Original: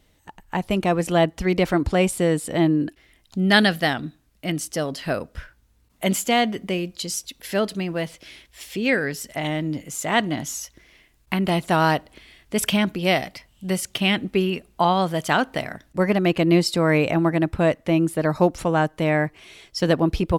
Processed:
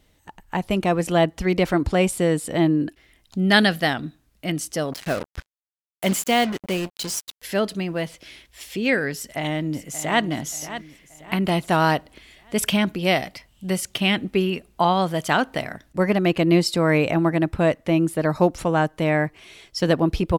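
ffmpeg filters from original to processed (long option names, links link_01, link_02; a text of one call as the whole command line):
ffmpeg -i in.wav -filter_complex "[0:a]asettb=1/sr,asplit=3[link_01][link_02][link_03];[link_01]atrim=end=4.924[link_04];[link_02]atrim=start=4.92:end=7.42,asetpts=PTS-STARTPTS,afade=type=in:duration=0.004:curve=qsin,afade=type=out:start_time=2.496:duration=0.004:curve=qsin,acrusher=bits=4:mix=0:aa=0.5[link_05];[link_03]atrim=start=7.416[link_06];[link_04][link_05]acrossfade=duration=0.004:curve1=hsin:curve2=qsin[link_07];[link_07][link_06]acrossfade=duration=0.004:curve1=qsin:curve2=hsin,asplit=2[link_08][link_09];[link_09]afade=type=in:start_time=9.15:duration=0.01,afade=type=out:start_time=10.23:duration=0.01,aecho=0:1:580|1160|1740|2320:0.237137|0.106712|0.0480203|0.0216091[link_10];[link_08][link_10]amix=inputs=2:normalize=0" out.wav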